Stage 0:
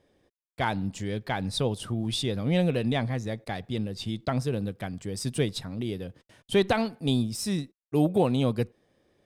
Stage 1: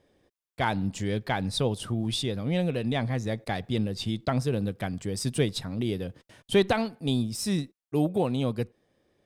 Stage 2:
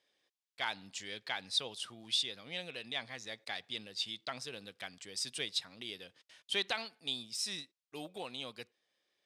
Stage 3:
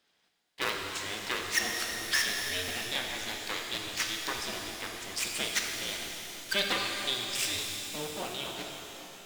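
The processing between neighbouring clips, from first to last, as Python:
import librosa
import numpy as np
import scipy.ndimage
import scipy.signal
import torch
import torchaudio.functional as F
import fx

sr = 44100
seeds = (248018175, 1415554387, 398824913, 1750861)

y1 = fx.rider(x, sr, range_db=3, speed_s=0.5)
y2 = fx.bandpass_q(y1, sr, hz=4000.0, q=0.91)
y3 = fx.cycle_switch(y2, sr, every=2, mode='inverted')
y3 = fx.rev_shimmer(y3, sr, seeds[0], rt60_s=3.4, semitones=12, shimmer_db=-8, drr_db=0.5)
y3 = y3 * librosa.db_to_amplitude(4.0)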